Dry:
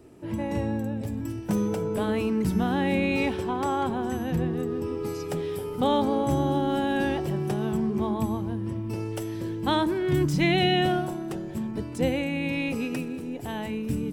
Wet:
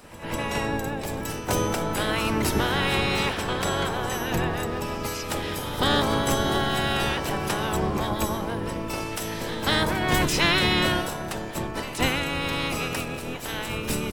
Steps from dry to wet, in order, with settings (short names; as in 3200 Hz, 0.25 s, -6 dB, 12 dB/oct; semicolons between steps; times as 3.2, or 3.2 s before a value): spectral limiter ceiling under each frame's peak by 23 dB; pre-echo 0.196 s -15 dB; harmoniser -12 st -6 dB, +5 st -13 dB